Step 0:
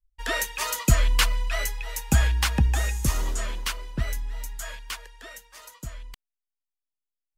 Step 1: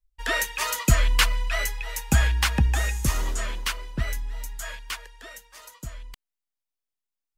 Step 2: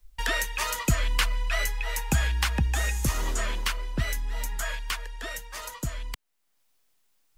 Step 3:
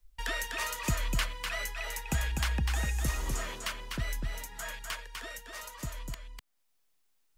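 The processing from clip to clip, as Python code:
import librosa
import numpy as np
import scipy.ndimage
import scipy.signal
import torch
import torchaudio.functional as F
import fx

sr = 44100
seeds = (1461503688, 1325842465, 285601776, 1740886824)

y1 = fx.dynamic_eq(x, sr, hz=1900.0, q=0.8, threshold_db=-41.0, ratio=4.0, max_db=3)
y2 = fx.band_squash(y1, sr, depth_pct=70)
y2 = F.gain(torch.from_numpy(y2), -2.0).numpy()
y3 = y2 + 10.0 ** (-4.5 / 20.0) * np.pad(y2, (int(249 * sr / 1000.0), 0))[:len(y2)]
y3 = F.gain(torch.from_numpy(y3), -7.0).numpy()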